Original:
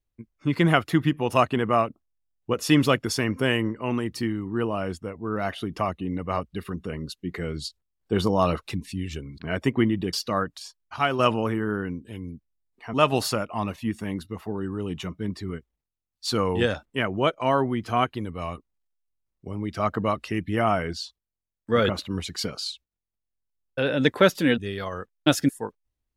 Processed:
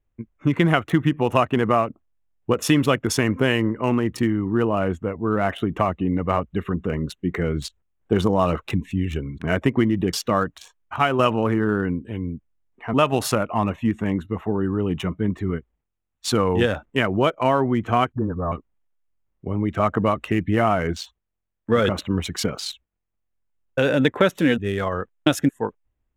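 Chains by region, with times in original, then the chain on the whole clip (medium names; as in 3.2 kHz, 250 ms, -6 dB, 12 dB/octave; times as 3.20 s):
18.12–18.52 s: brick-wall FIR low-pass 1.8 kHz + phase dispersion highs, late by 49 ms, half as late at 330 Hz
whole clip: local Wiener filter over 9 samples; compression 3:1, threshold -24 dBFS; peaking EQ 4.6 kHz -8.5 dB 0.33 oct; trim +8 dB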